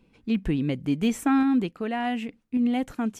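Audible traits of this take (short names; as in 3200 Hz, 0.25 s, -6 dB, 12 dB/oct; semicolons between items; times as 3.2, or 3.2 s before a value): random-step tremolo 3.5 Hz; AAC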